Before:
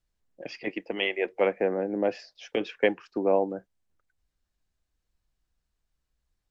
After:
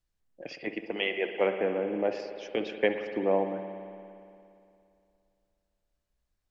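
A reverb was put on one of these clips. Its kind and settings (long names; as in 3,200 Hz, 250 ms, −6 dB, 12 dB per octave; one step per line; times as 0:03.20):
spring reverb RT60 2.6 s, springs 57 ms, chirp 60 ms, DRR 6.5 dB
level −2.5 dB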